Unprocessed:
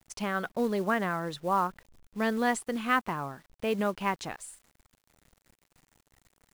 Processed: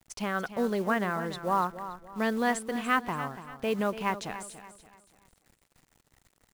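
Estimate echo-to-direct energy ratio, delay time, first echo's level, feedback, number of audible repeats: -12.0 dB, 0.287 s, -12.5 dB, 37%, 3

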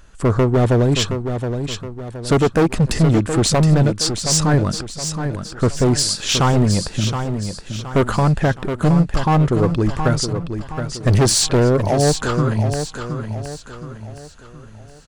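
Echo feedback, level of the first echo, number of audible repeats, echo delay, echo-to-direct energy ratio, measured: 42%, -8.0 dB, 4, 0.72 s, -7.0 dB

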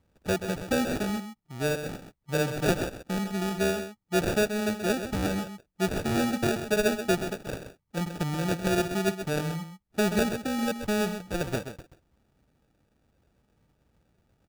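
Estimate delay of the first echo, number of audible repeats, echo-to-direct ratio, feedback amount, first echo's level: 0.13 s, 1, -9.5 dB, no steady repeat, -9.5 dB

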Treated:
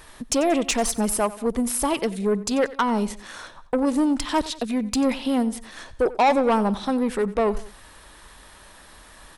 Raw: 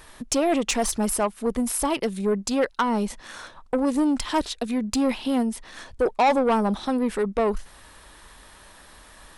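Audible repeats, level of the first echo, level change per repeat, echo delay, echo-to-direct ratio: 2, -18.0 dB, -6.0 dB, 91 ms, -17.0 dB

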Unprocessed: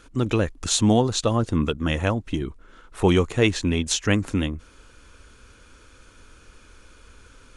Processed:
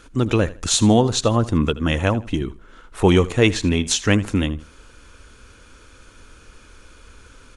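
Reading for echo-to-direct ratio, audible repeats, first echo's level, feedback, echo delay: -17.5 dB, 2, -18.0 dB, 25%, 79 ms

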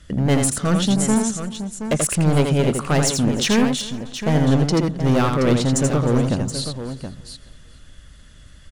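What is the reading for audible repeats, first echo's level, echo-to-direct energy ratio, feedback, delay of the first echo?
7, -5.0 dB, -3.5 dB, no steady repeat, 83 ms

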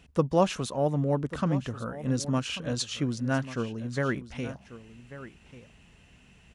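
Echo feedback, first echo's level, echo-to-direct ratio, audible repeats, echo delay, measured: no steady repeat, -15.0 dB, -15.0 dB, 1, 1.141 s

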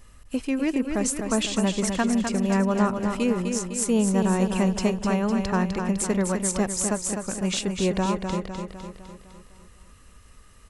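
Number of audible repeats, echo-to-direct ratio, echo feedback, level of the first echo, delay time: 6, -4.5 dB, 54%, -6.0 dB, 0.253 s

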